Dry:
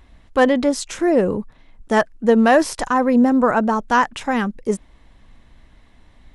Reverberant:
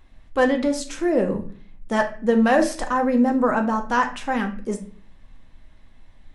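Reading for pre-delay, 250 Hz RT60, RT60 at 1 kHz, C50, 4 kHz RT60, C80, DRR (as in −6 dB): 4 ms, 0.70 s, 0.40 s, 10.5 dB, 0.35 s, 15.5 dB, 3.5 dB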